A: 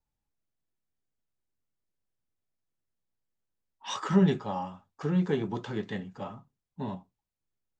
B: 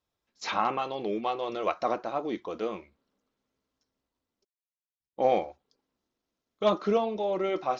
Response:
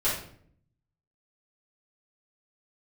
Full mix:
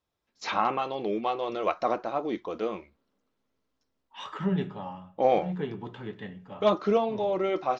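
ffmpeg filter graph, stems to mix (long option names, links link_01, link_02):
-filter_complex "[0:a]highshelf=frequency=4200:width_type=q:width=1.5:gain=-9.5,adelay=300,volume=-6dB,asplit=2[link_01][link_02];[link_02]volume=-21.5dB[link_03];[1:a]highshelf=frequency=5800:gain=-6.5,volume=1.5dB,asplit=2[link_04][link_05];[link_05]apad=whole_len=357127[link_06];[link_01][link_06]sidechaincompress=threshold=-31dB:ratio=8:attack=16:release=254[link_07];[2:a]atrim=start_sample=2205[link_08];[link_03][link_08]afir=irnorm=-1:irlink=0[link_09];[link_07][link_04][link_09]amix=inputs=3:normalize=0"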